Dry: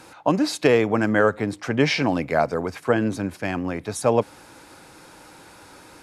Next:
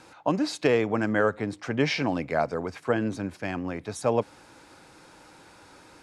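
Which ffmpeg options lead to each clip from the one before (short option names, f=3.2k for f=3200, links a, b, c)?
-af "lowpass=8.8k,volume=-5dB"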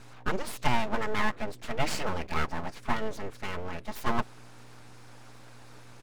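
-af "aeval=exprs='val(0)+0.00562*(sin(2*PI*60*n/s)+sin(2*PI*2*60*n/s)/2+sin(2*PI*3*60*n/s)/3+sin(2*PI*4*60*n/s)/4+sin(2*PI*5*60*n/s)/5)':c=same,aecho=1:1:4.7:0.96,aeval=exprs='abs(val(0))':c=same,volume=-4dB"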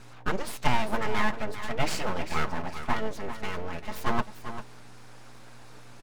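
-filter_complex "[0:a]asplit=2[a][b];[b]aecho=0:1:395:0.282[c];[a][c]amix=inputs=2:normalize=0,flanger=delay=5.3:depth=2:regen=-75:speed=0.92:shape=triangular,volume=5.5dB"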